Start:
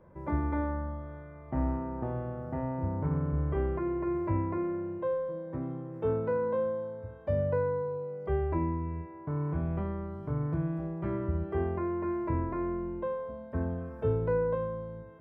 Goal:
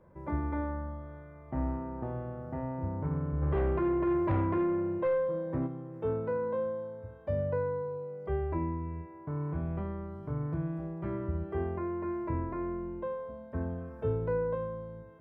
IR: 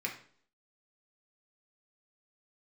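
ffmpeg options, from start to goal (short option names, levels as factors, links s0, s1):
-filter_complex "[0:a]asplit=3[s0][s1][s2];[s0]afade=t=out:st=3.41:d=0.02[s3];[s1]aeval=exprs='0.133*(cos(1*acos(clip(val(0)/0.133,-1,1)))-cos(1*PI/2))+0.0335*(cos(5*acos(clip(val(0)/0.133,-1,1)))-cos(5*PI/2))':c=same,afade=t=in:st=3.41:d=0.02,afade=t=out:st=5.66:d=0.02[s4];[s2]afade=t=in:st=5.66:d=0.02[s5];[s3][s4][s5]amix=inputs=3:normalize=0,volume=0.75"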